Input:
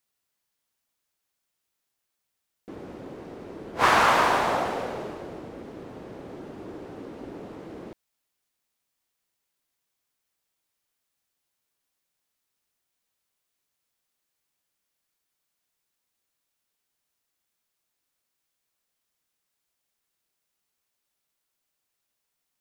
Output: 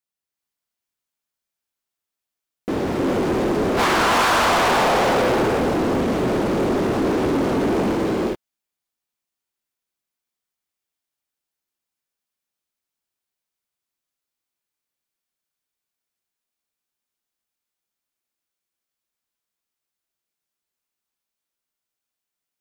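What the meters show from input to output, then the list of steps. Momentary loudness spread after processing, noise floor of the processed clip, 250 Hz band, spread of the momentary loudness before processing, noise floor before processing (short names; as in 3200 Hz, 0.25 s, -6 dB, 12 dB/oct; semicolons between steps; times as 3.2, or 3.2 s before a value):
8 LU, under -85 dBFS, +17.0 dB, 22 LU, -81 dBFS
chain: compressor 10:1, threshold -28 dBFS, peak gain reduction 13 dB; non-linear reverb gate 0.44 s rising, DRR -3 dB; sample leveller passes 5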